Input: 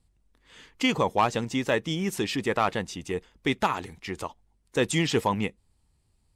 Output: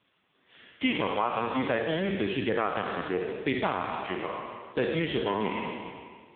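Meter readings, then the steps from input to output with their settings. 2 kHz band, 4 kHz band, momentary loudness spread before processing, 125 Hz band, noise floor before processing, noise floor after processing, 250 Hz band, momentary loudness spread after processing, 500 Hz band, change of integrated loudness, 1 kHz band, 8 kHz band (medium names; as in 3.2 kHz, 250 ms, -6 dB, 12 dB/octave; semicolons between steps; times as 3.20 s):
-1.5 dB, -4.5 dB, 11 LU, -5.0 dB, -69 dBFS, -71 dBFS, -2.0 dB, 8 LU, -0.5 dB, -2.5 dB, -2.5 dB, under -40 dB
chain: spectral sustain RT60 1.78 s; high-pass 140 Hz 12 dB/octave; band-stop 860 Hz, Q 16; compression 5:1, threshold -22 dBFS, peak gain reduction 8 dB; added noise white -59 dBFS; AMR-NB 5.15 kbps 8 kHz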